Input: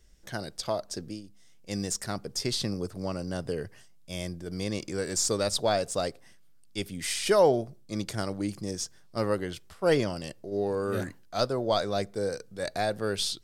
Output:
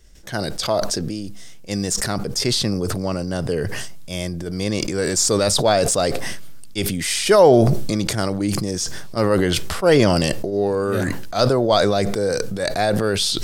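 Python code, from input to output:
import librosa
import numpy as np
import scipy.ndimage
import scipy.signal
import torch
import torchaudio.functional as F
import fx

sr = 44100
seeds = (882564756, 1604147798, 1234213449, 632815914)

y = fx.sustainer(x, sr, db_per_s=22.0)
y = y * librosa.db_to_amplitude(8.5)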